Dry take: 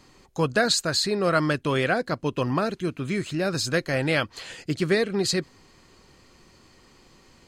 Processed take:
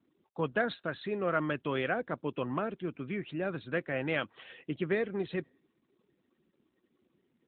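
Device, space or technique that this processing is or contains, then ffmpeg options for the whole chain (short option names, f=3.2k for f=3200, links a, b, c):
mobile call with aggressive noise cancelling: -af "highpass=160,afftdn=nr=34:nf=-48,volume=-7.5dB" -ar 8000 -c:a libopencore_amrnb -b:a 12200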